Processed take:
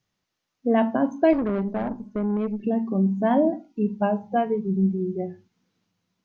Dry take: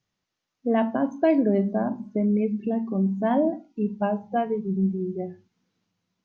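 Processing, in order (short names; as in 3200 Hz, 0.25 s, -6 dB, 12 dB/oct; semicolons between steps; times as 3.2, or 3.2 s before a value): 1.33–2.64 tube stage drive 23 dB, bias 0.6; gain +2 dB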